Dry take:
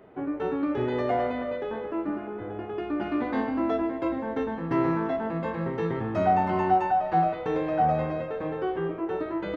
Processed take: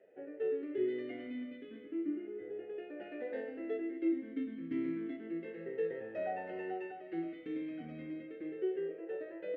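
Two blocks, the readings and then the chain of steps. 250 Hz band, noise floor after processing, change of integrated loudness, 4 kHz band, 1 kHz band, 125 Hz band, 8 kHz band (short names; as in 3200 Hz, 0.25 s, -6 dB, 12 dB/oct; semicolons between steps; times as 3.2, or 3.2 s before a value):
-10.0 dB, -50 dBFS, -12.0 dB, under -10 dB, -24.0 dB, -22.5 dB, n/a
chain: vowel sweep e-i 0.32 Hz; gain -1 dB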